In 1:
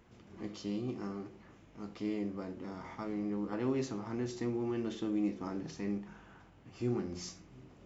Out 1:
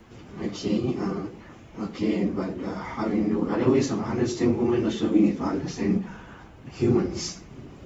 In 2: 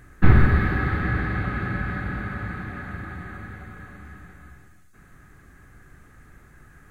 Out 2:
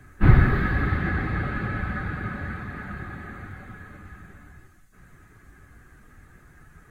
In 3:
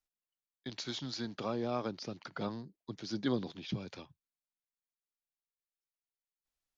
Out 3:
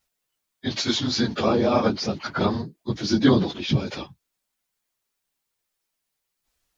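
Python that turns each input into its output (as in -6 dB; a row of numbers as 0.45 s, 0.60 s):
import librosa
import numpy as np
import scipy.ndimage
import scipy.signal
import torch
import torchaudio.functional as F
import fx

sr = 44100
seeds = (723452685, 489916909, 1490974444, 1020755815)

y = fx.phase_scramble(x, sr, seeds[0], window_ms=50)
y = y * 10.0 ** (-26 / 20.0) / np.sqrt(np.mean(np.square(y)))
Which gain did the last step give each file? +12.5 dB, -1.0 dB, +15.5 dB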